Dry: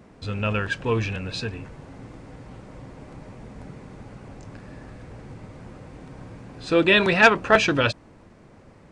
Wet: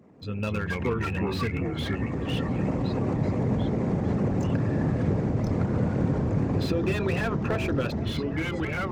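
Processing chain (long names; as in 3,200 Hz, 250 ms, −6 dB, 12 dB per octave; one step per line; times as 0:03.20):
spectral envelope exaggerated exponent 1.5
camcorder AGC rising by 11 dB per second
high-pass filter 110 Hz 12 dB per octave
parametric band 6,900 Hz +5.5 dB 0.48 octaves
notch filter 1,500 Hz, Q 14
hum removal 326 Hz, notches 3
downward compressor 8 to 1, threshold −20 dBFS, peak gain reduction 11 dB
echo through a band-pass that steps 380 ms, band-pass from 170 Hz, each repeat 1.4 octaves, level −6.5 dB
delay with pitch and tempo change per echo 200 ms, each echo −3 semitones, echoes 2
slew-rate limiting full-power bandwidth 92 Hz
level −4 dB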